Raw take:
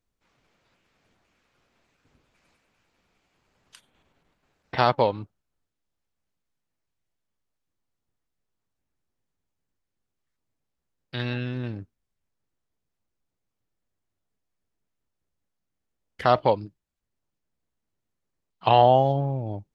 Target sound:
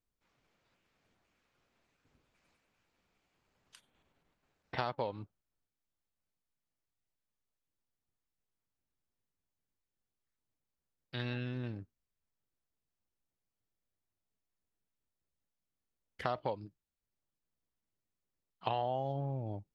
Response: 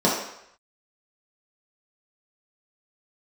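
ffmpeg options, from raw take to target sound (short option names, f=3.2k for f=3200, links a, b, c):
-af "acompressor=threshold=-23dB:ratio=6,volume=-8dB"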